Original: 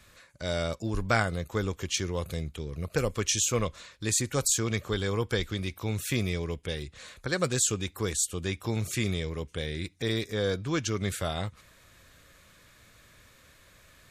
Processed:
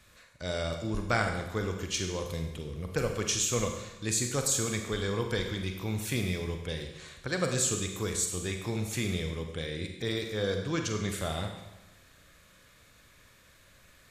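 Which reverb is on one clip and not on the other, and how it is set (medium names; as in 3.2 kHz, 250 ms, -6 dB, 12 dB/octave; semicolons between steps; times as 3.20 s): Schroeder reverb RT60 1 s, combs from 33 ms, DRR 4 dB; trim -3 dB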